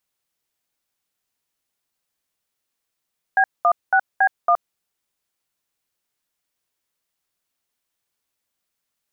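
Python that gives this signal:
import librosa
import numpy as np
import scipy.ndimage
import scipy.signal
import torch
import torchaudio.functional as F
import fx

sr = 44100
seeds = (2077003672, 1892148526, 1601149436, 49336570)

y = fx.dtmf(sr, digits='B16B1', tone_ms=70, gap_ms=208, level_db=-15.0)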